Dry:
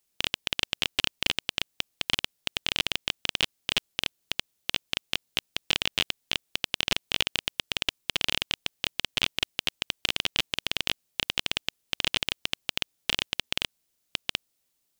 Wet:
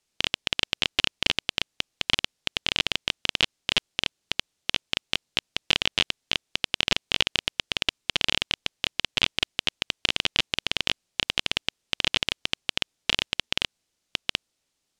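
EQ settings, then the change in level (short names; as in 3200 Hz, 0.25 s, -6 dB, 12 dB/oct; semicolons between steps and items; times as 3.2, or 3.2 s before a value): LPF 7300 Hz 12 dB/oct; +3.0 dB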